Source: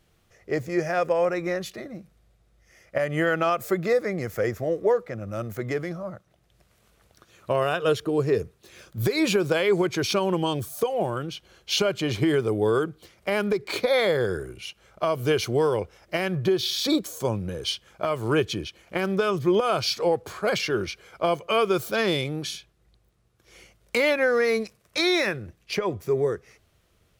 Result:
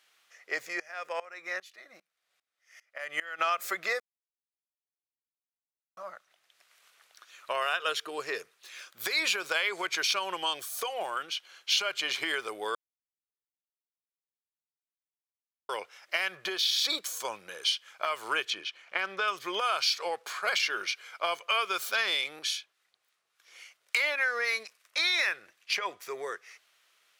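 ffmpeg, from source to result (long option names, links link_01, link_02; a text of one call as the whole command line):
ffmpeg -i in.wav -filter_complex "[0:a]asplit=3[link_01][link_02][link_03];[link_01]afade=type=out:start_time=0.72:duration=0.02[link_04];[link_02]aeval=exprs='val(0)*pow(10,-22*if(lt(mod(-2.5*n/s,1),2*abs(-2.5)/1000),1-mod(-2.5*n/s,1)/(2*abs(-2.5)/1000),(mod(-2.5*n/s,1)-2*abs(-2.5)/1000)/(1-2*abs(-2.5)/1000))/20)':channel_layout=same,afade=type=in:start_time=0.72:duration=0.02,afade=type=out:start_time=3.38:duration=0.02[link_05];[link_03]afade=type=in:start_time=3.38:duration=0.02[link_06];[link_04][link_05][link_06]amix=inputs=3:normalize=0,asettb=1/sr,asplit=3[link_07][link_08][link_09];[link_07]atrim=end=18.504[link_10];[link_08]atrim=start=18.5:end=19.28,asetpts=PTS-STARTPTS,afade=type=in:duration=0.004:curve=qsin,afade=type=out:start_time=0.776:duration=0.004:curve=qsin,aemphasis=mode=reproduction:type=50fm[link_11];[link_09]atrim=start=19.276[link_12];[link_10][link_11]acrossfade=duration=0.004:curve1=hsin:curve2=qsin[link_13];[link_13][link_12]acrossfade=duration=0.004:curve1=qsin:curve2=hsin,asettb=1/sr,asplit=3[link_14][link_15][link_16];[link_14]atrim=end=22.394[link_17];[link_15]atrim=start=22.39:end=25.19,asetpts=PTS-STARTPTS,afade=type=in:duration=0.004:curve=qsin,afade=type=out:start_time=2.796:duration=0.004:curve=qsin,acrossover=split=990[link_18][link_19];[link_18]aeval=exprs='val(0)*(1-0.5/2+0.5/2*cos(2*PI*3.5*n/s))':channel_layout=same[link_20];[link_19]aeval=exprs='val(0)*(1-0.5/2-0.5/2*cos(2*PI*3.5*n/s))':channel_layout=same[link_21];[link_20][link_21]amix=inputs=2:normalize=0[link_22];[link_16]atrim=start=25.186[link_23];[link_17][link_22]acrossfade=duration=0.004:curve1=hsin:curve2=qsin[link_24];[link_24][link_23]acrossfade=duration=0.004:curve1=qsin:curve2=hsin,asplit=5[link_25][link_26][link_27][link_28][link_29];[link_25]atrim=end=4,asetpts=PTS-STARTPTS,afade=type=out:start_time=3.996:duration=0.004:curve=hsin[link_30];[link_26]atrim=start=4:end=5.97,asetpts=PTS-STARTPTS,volume=0[link_31];[link_27]atrim=start=5.97:end=12.75,asetpts=PTS-STARTPTS,afade=type=in:duration=0.004:curve=hsin,afade=type=out:start_time=6.776:duration=0.004:curve=hsin[link_32];[link_28]atrim=start=12.75:end=15.69,asetpts=PTS-STARTPTS,volume=0[link_33];[link_29]atrim=start=15.69,asetpts=PTS-STARTPTS,afade=type=in:duration=0.004:curve=hsin[link_34];[link_30][link_31][link_32][link_33][link_34]concat=n=5:v=0:a=1,highpass=1400,highshelf=frequency=6800:gain=-7,acompressor=threshold=-33dB:ratio=2,volume=6dB" out.wav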